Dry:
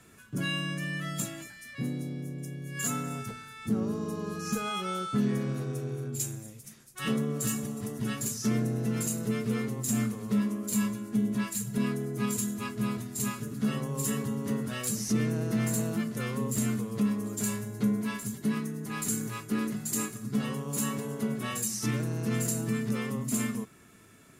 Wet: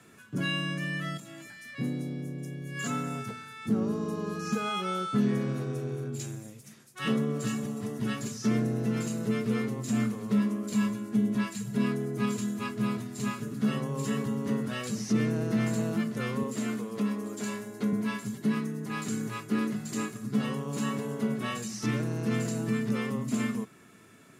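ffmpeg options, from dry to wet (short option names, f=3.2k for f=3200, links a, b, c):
-filter_complex "[0:a]asettb=1/sr,asplit=3[a][b][c];[a]atrim=end=1.174[d];[b]atrim=start=1.17:end=1.63,asetpts=PTS-STARTPTS,afade=t=in:d=0.004:c=qsin,afade=t=out:st=0.456:d=0.004:c=qsin,acompressor=threshold=-42dB:ratio=8:attack=3.2:release=140:knee=1:detection=peak[e];[c]atrim=start=1.626[f];[d][e]acrossfade=d=0.004:c1=hsin:c2=qsin[g];[g][f]acrossfade=d=0.004:c1=qsin:c2=hsin,asettb=1/sr,asplit=3[h][i][j];[h]atrim=end=16.434[k];[i]atrim=start=16.43:end=17.93,asetpts=PTS-STARTPTS,afade=t=in:d=0.004:c=qsin,afade=t=out:st=1.496:d=0.004:c=qsin,highpass=230[l];[j]atrim=start=17.926[m];[k][l]acrossfade=d=0.004:c1=hsin:c2=qsin[n];[n][m]acrossfade=d=0.004:c1=qsin:c2=hsin,highpass=120,acrossover=split=6100[o][p];[p]acompressor=threshold=-48dB:ratio=4:attack=1:release=60[q];[o][q]amix=inputs=2:normalize=0,highshelf=f=6.5k:g=-6.5,volume=2dB"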